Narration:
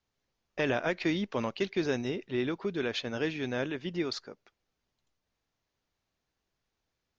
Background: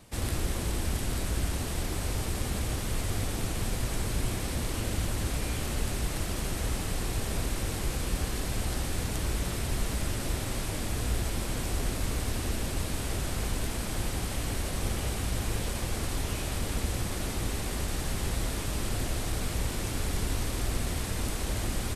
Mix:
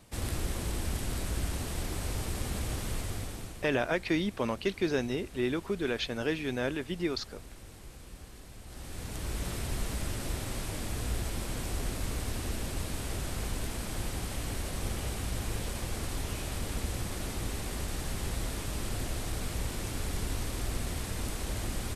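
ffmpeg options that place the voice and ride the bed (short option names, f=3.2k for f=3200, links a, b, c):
-filter_complex "[0:a]adelay=3050,volume=0.5dB[a];[1:a]volume=11dB,afade=t=out:st=2.88:d=0.81:silence=0.188365,afade=t=in:st=8.65:d=0.83:silence=0.199526[b];[a][b]amix=inputs=2:normalize=0"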